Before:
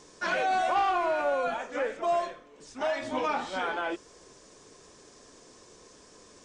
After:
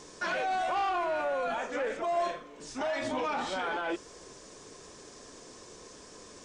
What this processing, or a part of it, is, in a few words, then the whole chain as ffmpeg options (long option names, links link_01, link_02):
soft clipper into limiter: -filter_complex "[0:a]asoftclip=type=tanh:threshold=-21dB,alimiter=level_in=5.5dB:limit=-24dB:level=0:latency=1:release=21,volume=-5.5dB,asettb=1/sr,asplit=3[link_01][link_02][link_03];[link_01]atrim=end=2.134[link_04];[link_02]atrim=start=2.13:end=2.8,asetpts=PTS-STARTPTS,afade=type=in:duration=0.004:curve=qsin,afade=type=out:start_time=0.666:duration=0.004:curve=qsin,asplit=2[link_05][link_06];[link_06]adelay=38,volume=-5dB[link_07];[link_05][link_07]amix=inputs=2:normalize=0,atrim=end_sample=29547[link_08];[link_03]atrim=start=2.796[link_09];[link_04][link_08]acrossfade=duration=0.004:curve1=hsin:curve2=qsin[link_10];[link_10][link_09]acrossfade=duration=0.004:curve1=qsin:curve2=hsin,volume=4dB"